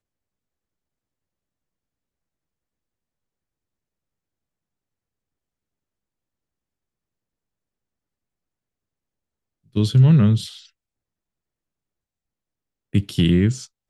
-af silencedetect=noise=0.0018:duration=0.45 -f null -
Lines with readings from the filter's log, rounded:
silence_start: 0.00
silence_end: 9.66 | silence_duration: 9.66
silence_start: 10.70
silence_end: 12.93 | silence_duration: 2.23